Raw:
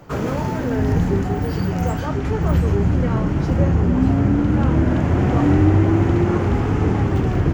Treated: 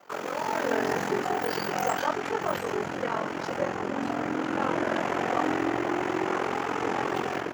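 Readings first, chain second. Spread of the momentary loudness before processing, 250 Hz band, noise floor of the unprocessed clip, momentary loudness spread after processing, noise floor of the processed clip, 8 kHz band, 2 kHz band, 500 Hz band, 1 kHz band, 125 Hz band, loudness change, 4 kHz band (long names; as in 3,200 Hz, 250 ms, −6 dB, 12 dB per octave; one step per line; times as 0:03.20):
7 LU, −13.0 dB, −24 dBFS, 4 LU, −34 dBFS, can't be measured, +0.5 dB, −5.0 dB, −0.5 dB, −26.0 dB, −10.0 dB, +1.0 dB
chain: ring modulation 22 Hz
automatic gain control
high-pass filter 580 Hz 12 dB per octave
level −2 dB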